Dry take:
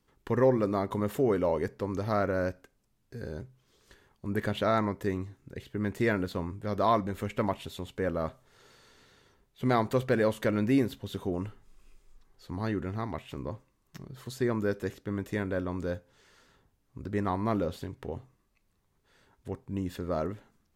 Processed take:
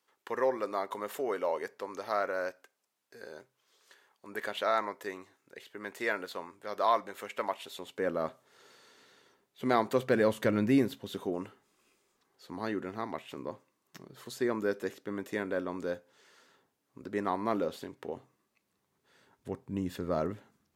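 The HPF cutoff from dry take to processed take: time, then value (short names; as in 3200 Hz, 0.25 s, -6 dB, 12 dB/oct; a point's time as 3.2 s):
7.56 s 590 Hz
8.09 s 250 Hz
9.88 s 250 Hz
10.47 s 96 Hz
11.36 s 270 Hz
18.01 s 270 Hz
19.9 s 110 Hz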